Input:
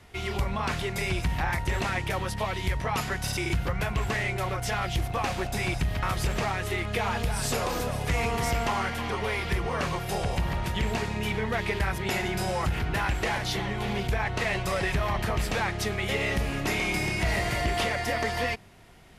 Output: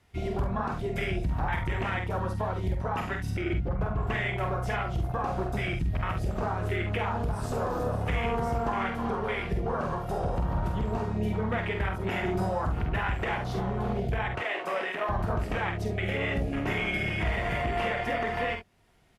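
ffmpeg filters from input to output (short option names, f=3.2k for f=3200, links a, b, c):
-filter_complex "[0:a]asettb=1/sr,asplit=3[a][b][c];[a]atrim=end=14.354[d];[b]atrim=start=14.35:end=15.09,asetpts=PTS-STARTPTS,afade=t=in:d=0.004:c=qsin,afade=t=out:st=0.736:d=0.004:c=qsin,highpass=370[e];[c]atrim=start=15.086[f];[d][e]acrossfade=d=0.004:c1=hsin:c2=qsin[g];[g][f]acrossfade=d=0.004:c1=qsin:c2=hsin,afwtdn=0.0316,asettb=1/sr,asplit=3[h][i][j];[h]atrim=end=3.304[k];[i]atrim=start=3.3:end=4.07,asetpts=PTS-STARTPTS,afade=t=in:d=0.004:c=qsin,afade=t=out:st=0.766:d=0.004:c=qsin,lowpass=f=2.2k:p=1[l];[j]atrim=start=4.066[m];[k][l]acrossfade=d=0.004:c1=hsin:c2=qsin[n];[n][m]acrossfade=d=0.004:c1=qsin:c2=hsin,alimiter=level_in=2dB:limit=-24dB:level=0:latency=1:release=384,volume=-2dB,aecho=1:1:47|69:0.501|0.266,volume=4.5dB" -ar 48000 -c:a libopus -b:a 64k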